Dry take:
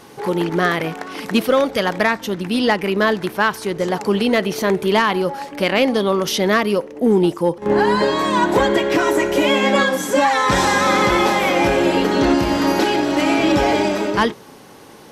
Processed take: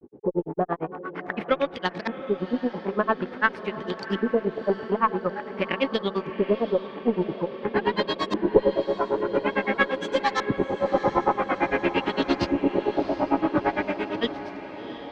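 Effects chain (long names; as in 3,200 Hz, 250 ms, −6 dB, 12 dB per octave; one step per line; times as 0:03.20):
auto-filter low-pass saw up 0.48 Hz 340–5,100 Hz
granular cloud 86 ms, grains 8.8 per second, spray 20 ms, pitch spread up and down by 0 semitones
on a send: feedback delay with all-pass diffusion 728 ms, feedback 62%, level −12 dB
on the sum: harmonic generator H 2 −16 dB, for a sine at 0 dBFS
level −5 dB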